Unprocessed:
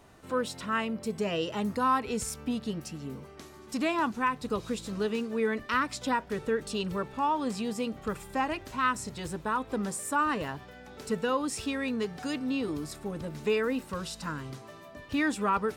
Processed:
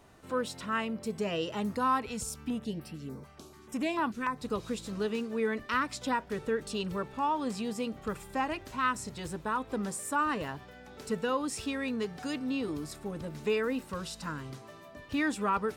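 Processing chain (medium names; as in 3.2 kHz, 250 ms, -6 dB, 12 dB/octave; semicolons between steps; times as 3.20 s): 2.06–4.38 s: step-sequenced notch 6.8 Hz 370–6700 Hz; trim -2 dB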